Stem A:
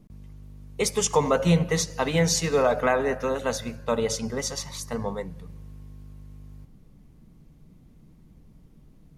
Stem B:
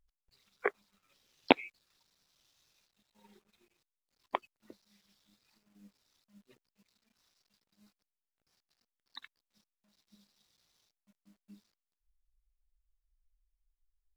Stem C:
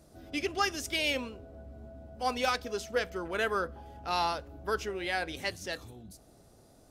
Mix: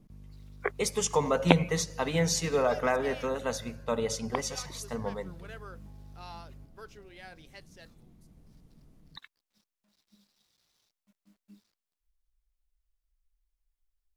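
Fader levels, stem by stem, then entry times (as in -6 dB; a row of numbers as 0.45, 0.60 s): -5.0, +0.5, -16.5 dB; 0.00, 0.00, 2.10 s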